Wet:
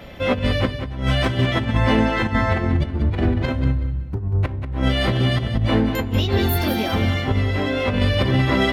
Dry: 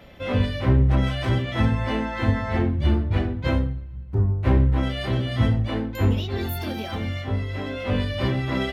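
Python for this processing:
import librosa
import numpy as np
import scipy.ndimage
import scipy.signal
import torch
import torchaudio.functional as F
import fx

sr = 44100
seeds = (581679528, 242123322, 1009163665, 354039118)

y = fx.over_compress(x, sr, threshold_db=-24.0, ratio=-0.5)
y = fx.echo_feedback(y, sr, ms=188, feedback_pct=21, wet_db=-9.0)
y = y * 10.0 ** (5.5 / 20.0)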